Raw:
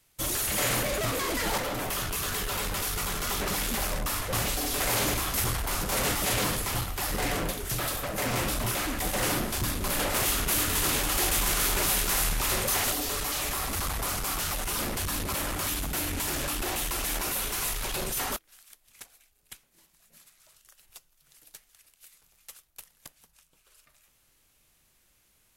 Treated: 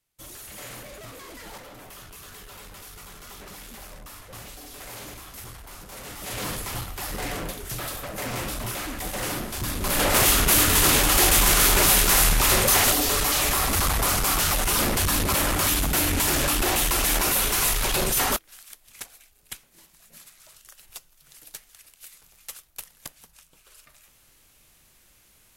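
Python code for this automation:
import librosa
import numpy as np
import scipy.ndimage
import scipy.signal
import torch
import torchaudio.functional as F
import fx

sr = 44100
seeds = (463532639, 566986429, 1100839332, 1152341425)

y = fx.gain(x, sr, db=fx.line((6.05, -13.0), (6.5, -2.0), (9.53, -2.0), (10.13, 8.0)))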